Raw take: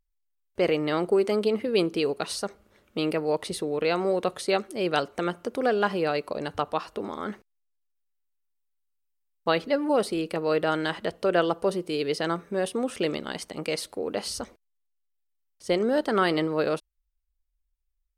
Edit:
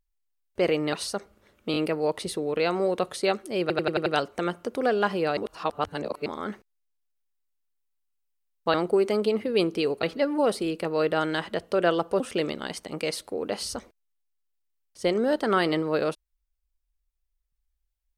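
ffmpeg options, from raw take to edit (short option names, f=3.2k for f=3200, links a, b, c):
-filter_complex "[0:a]asplit=14[a][b][c][d][e][f][g][h][i][j][k][l][m][n];[a]atrim=end=0.932[o];[b]atrim=start=2.218:end=3.032[p];[c]atrim=start=3.008:end=3.032[q];[d]atrim=start=3.008:end=4.952[r];[e]atrim=start=4.858:end=4.952[s];[f]atrim=start=4.858:end=4.952[t];[g]atrim=start=4.858:end=4.952[u];[h]atrim=start=4.858:end=4.952[v];[i]atrim=start=4.858:end=6.172[w];[j]atrim=start=6.168:end=7.062,asetpts=PTS-STARTPTS,areverse[x];[k]atrim=start=7.058:end=9.542[y];[l]atrim=start=0.928:end=2.222[z];[m]atrim=start=9.538:end=11.712[aa];[n]atrim=start=12.848[ab];[o][p]acrossfade=d=0.004:c1=hsin:c2=hsin[ac];[ac][q]acrossfade=d=0.004:c1=hsin:c2=hsin[ad];[ad][r]acrossfade=d=0.004:c1=hsin:c2=hsin[ae];[ae][s]acrossfade=d=0.004:c1=hsin:c2=hsin[af];[af][t]acrossfade=d=0.004:c1=hsin:c2=hsin[ag];[ag][u]acrossfade=d=0.004:c1=hsin:c2=hsin[ah];[ah][v]acrossfade=d=0.004:c1=hsin:c2=hsin[ai];[ai][w]acrossfade=d=0.004:c1=hsin:c2=hsin[aj];[aj][x]acrossfade=d=0.004:c1=hsin:c2=hsin[ak];[ak][y]acrossfade=d=0.004:c1=hsin:c2=hsin[al];[al][z]acrossfade=d=0.004:c1=hsin:c2=hsin[am];[am][aa]acrossfade=d=0.004:c1=hsin:c2=hsin[an];[an][ab]acrossfade=d=0.004:c1=hsin:c2=hsin"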